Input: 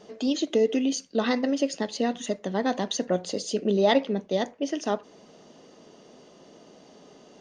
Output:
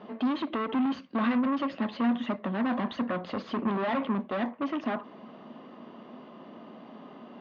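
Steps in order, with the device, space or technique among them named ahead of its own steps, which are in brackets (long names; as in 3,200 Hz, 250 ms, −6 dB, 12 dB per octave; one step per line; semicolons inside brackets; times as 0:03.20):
guitar amplifier (tube saturation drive 33 dB, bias 0.4; bass and treble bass −3 dB, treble −14 dB; loudspeaker in its box 100–3,700 Hz, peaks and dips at 230 Hz +10 dB, 450 Hz −7 dB, 1,100 Hz +9 dB)
level +5.5 dB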